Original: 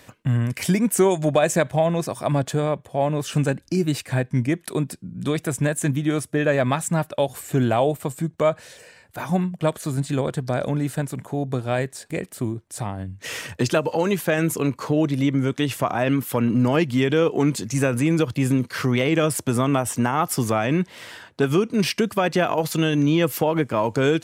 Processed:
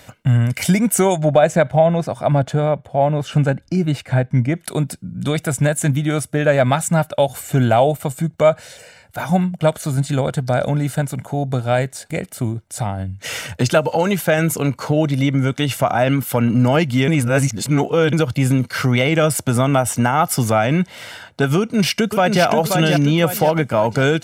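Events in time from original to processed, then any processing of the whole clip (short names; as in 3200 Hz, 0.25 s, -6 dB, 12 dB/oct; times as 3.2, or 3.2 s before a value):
1.16–4.56 LPF 2200 Hz 6 dB/oct
17.08–18.13 reverse
21.59–22.43 echo throw 0.53 s, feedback 45%, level -5 dB
whole clip: comb 1.4 ms, depth 43%; gain +4.5 dB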